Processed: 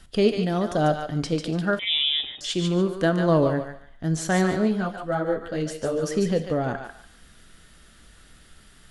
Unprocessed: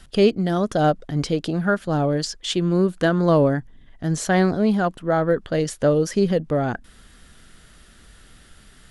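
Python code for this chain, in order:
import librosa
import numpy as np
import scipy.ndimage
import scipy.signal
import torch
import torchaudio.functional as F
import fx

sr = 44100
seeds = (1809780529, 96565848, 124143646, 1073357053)

y = fx.echo_thinned(x, sr, ms=145, feedback_pct=26, hz=800.0, wet_db=-5)
y = fx.rev_gated(y, sr, seeds[0], gate_ms=230, shape='falling', drr_db=11.0)
y = fx.freq_invert(y, sr, carrier_hz=3700, at=(1.79, 2.41))
y = fx.ensemble(y, sr, at=(4.67, 6.02), fade=0.02)
y = y * 10.0 ** (-3.5 / 20.0)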